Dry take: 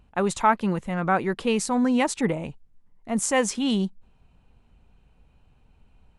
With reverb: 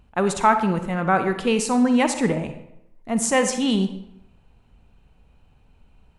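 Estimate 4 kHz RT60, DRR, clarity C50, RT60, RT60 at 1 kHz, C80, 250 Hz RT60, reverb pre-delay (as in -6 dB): 0.55 s, 8.0 dB, 9.0 dB, 0.80 s, 0.80 s, 12.0 dB, 0.85 s, 38 ms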